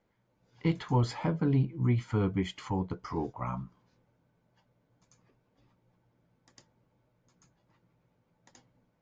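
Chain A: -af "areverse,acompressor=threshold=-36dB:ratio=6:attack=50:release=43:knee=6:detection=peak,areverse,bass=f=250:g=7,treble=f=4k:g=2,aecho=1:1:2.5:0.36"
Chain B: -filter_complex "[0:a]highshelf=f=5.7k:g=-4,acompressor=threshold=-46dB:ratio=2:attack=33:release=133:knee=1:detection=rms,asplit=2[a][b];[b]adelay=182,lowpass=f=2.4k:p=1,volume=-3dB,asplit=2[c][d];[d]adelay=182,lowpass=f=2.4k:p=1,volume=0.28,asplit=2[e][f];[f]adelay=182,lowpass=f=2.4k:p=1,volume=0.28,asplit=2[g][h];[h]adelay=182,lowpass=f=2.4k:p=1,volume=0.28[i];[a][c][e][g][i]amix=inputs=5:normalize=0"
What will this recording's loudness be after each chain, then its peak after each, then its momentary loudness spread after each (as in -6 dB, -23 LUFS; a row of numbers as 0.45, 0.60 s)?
-33.0, -40.0 LUFS; -18.5, -26.0 dBFS; 6, 7 LU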